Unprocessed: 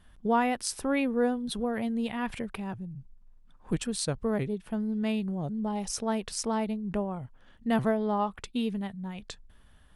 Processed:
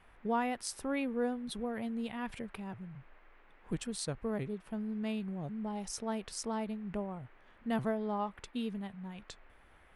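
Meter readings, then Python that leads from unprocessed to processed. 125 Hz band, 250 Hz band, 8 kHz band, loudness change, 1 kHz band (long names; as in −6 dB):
−7.0 dB, −7.0 dB, −7.0 dB, −7.0 dB, −7.0 dB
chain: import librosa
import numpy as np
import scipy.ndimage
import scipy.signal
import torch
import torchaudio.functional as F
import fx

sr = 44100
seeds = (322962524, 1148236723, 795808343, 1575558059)

y = fx.dmg_noise_band(x, sr, seeds[0], low_hz=260.0, high_hz=2200.0, level_db=-58.0)
y = y * 10.0 ** (-7.0 / 20.0)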